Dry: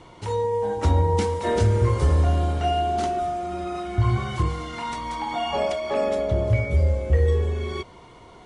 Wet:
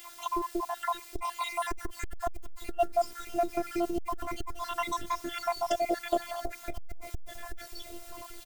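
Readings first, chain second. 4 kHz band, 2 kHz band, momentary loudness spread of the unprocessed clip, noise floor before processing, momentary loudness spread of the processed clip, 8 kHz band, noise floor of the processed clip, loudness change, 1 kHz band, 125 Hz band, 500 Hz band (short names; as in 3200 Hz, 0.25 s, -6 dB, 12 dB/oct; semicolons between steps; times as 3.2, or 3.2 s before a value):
-6.5 dB, -6.0 dB, 10 LU, -47 dBFS, 15 LU, -2.0 dB, -49 dBFS, -10.0 dB, -5.5 dB, -30.0 dB, -9.5 dB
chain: random spectral dropouts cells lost 73%; in parallel at +2 dB: compressor, threshold -31 dBFS, peak gain reduction 14.5 dB; on the sum: requantised 8-bit, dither triangular; robotiser 344 Hz; on a send: feedback echo 0.579 s, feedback 56%, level -20.5 dB; on the sum: core saturation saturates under 140 Hz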